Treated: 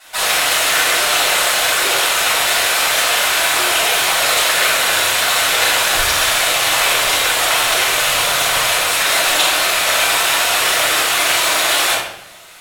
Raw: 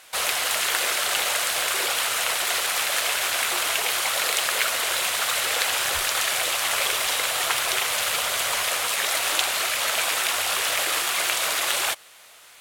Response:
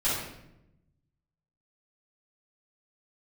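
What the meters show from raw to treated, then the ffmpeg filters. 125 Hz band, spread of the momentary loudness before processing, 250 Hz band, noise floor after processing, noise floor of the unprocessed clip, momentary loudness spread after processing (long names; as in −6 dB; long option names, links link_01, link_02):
+12.5 dB, 1 LU, +12.0 dB, −32 dBFS, −49 dBFS, 1 LU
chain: -filter_complex "[1:a]atrim=start_sample=2205,asetrate=48510,aresample=44100[link_01];[0:a][link_01]afir=irnorm=-1:irlink=0"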